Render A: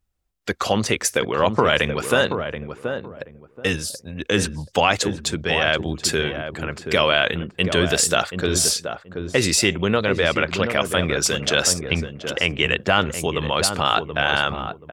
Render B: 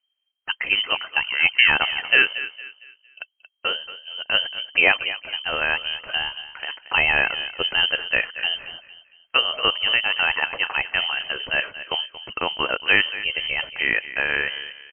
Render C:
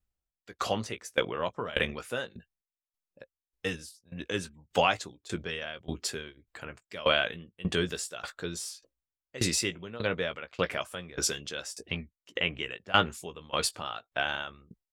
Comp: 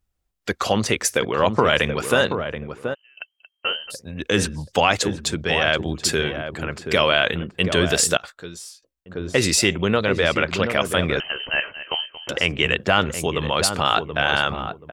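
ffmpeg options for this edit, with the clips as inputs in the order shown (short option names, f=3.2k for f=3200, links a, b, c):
-filter_complex "[1:a]asplit=2[a][b];[0:a]asplit=4[c][d][e][f];[c]atrim=end=2.95[g];[a]atrim=start=2.93:end=3.92[h];[d]atrim=start=3.9:end=8.172[i];[2:a]atrim=start=8.168:end=9.062[j];[e]atrim=start=9.058:end=11.202[k];[b]atrim=start=11.198:end=12.292[l];[f]atrim=start=12.288[m];[g][h]acrossfade=d=0.02:c1=tri:c2=tri[n];[n][i]acrossfade=d=0.02:c1=tri:c2=tri[o];[o][j]acrossfade=d=0.004:c1=hsin:c2=hsin[p];[p][k]acrossfade=d=0.004:c1=hsin:c2=hsin[q];[q][l]acrossfade=d=0.004:c1=hsin:c2=hsin[r];[r][m]acrossfade=d=0.004:c1=hsin:c2=hsin"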